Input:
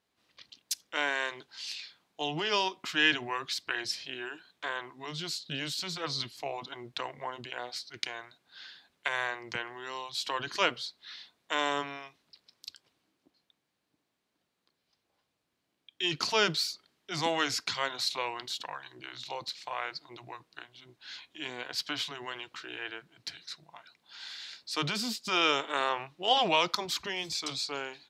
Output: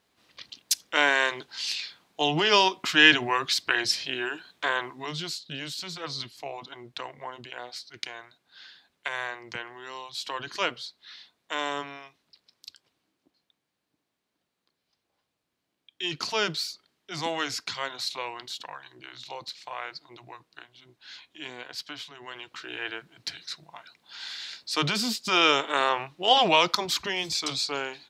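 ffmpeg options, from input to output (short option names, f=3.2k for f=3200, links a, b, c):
-af "volume=21dB,afade=t=out:st=4.82:d=0.59:silence=0.354813,afade=t=out:st=21.5:d=0.59:silence=0.473151,afade=t=in:st=22.09:d=0.79:silence=0.237137"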